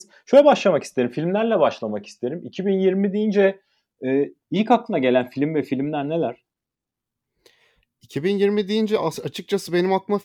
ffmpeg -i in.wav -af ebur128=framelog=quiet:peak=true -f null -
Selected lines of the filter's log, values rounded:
Integrated loudness:
  I:         -21.0 LUFS
  Threshold: -31.6 LUFS
Loudness range:
  LRA:         5.6 LU
  Threshold: -42.8 LUFS
  LRA low:   -26.3 LUFS
  LRA high:  -20.7 LUFS
True peak:
  Peak:       -3.4 dBFS